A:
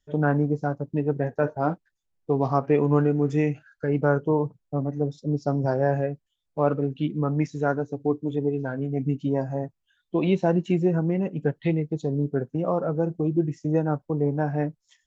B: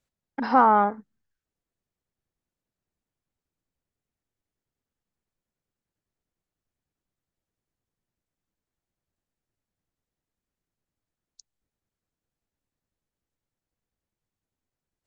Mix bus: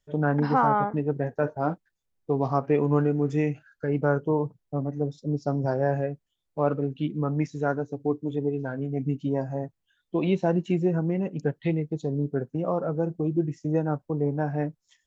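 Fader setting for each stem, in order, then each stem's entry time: -2.0, -4.5 dB; 0.00, 0.00 s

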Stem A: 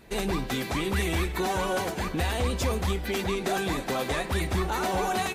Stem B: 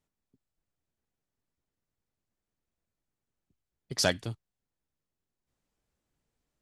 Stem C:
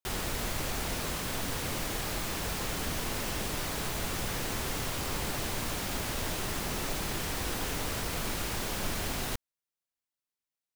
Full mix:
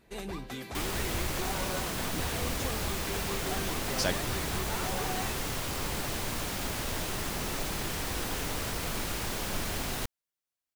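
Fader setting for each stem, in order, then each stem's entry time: -10.0, -4.0, 0.0 dB; 0.00, 0.00, 0.70 s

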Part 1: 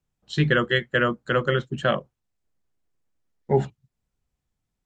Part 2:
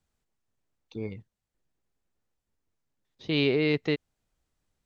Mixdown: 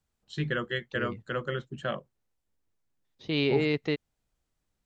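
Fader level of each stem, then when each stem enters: -10.0, -2.0 dB; 0.00, 0.00 s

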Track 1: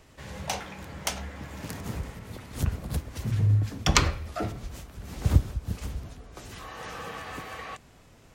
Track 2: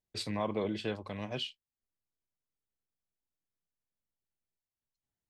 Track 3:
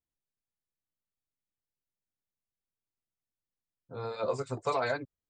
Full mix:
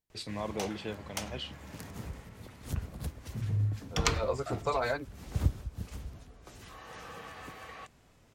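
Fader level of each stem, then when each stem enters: -7.5, -3.0, -0.5 dB; 0.10, 0.00, 0.00 s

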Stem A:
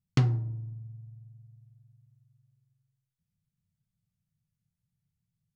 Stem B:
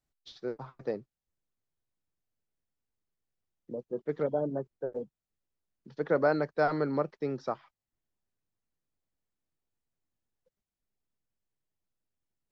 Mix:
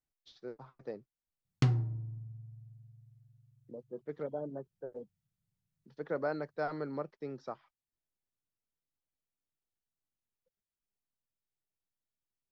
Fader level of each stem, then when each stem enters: -3.5, -8.5 dB; 1.45, 0.00 s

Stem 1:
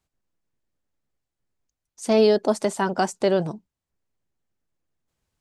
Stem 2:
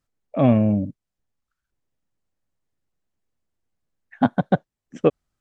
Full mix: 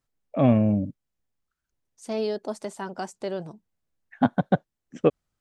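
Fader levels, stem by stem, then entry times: -10.5, -2.5 dB; 0.00, 0.00 s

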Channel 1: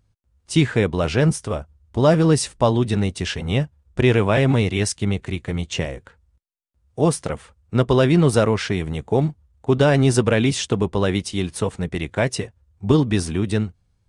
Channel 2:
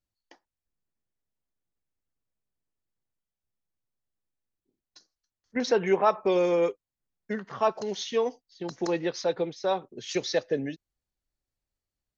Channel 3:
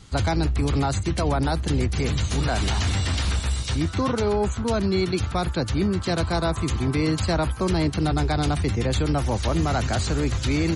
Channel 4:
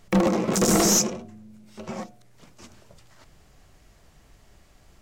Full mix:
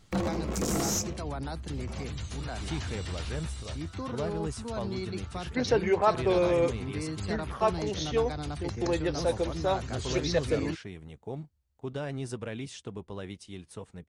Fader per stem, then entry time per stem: -19.5, -1.5, -13.0, -10.5 dB; 2.15, 0.00, 0.00, 0.00 s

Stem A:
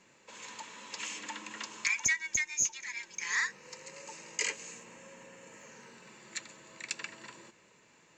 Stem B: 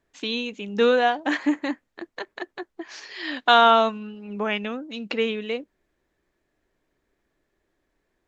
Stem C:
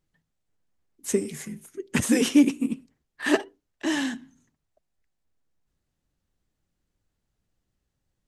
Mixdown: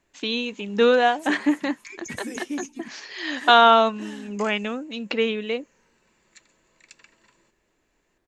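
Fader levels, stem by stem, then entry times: -12.0, +1.5, -13.5 dB; 0.00, 0.00, 0.15 s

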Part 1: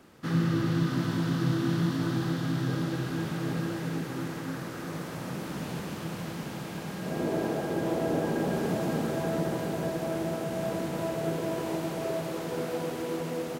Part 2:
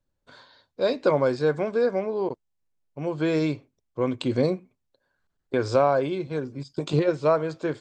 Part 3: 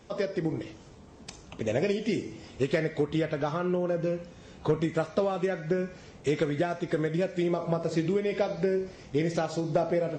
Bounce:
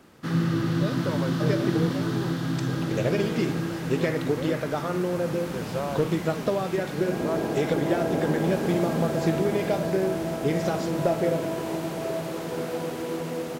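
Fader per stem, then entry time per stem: +2.0, -11.0, +1.0 dB; 0.00, 0.00, 1.30 s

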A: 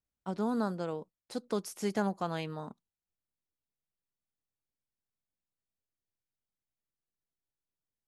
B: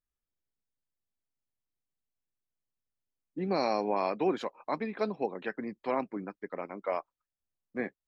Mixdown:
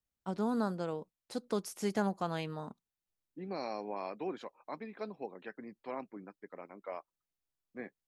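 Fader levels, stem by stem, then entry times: -1.0, -10.0 dB; 0.00, 0.00 s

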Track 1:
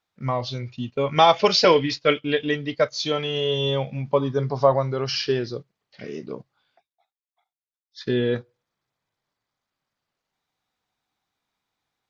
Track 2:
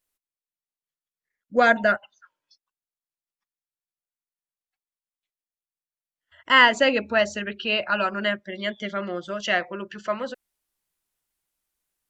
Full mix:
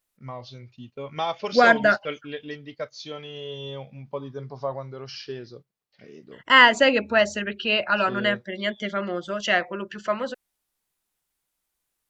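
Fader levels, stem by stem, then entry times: -12.0, +1.5 dB; 0.00, 0.00 s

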